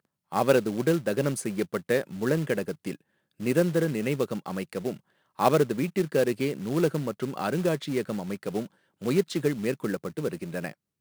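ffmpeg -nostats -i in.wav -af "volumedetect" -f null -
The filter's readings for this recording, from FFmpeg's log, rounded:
mean_volume: -27.8 dB
max_volume: -6.8 dB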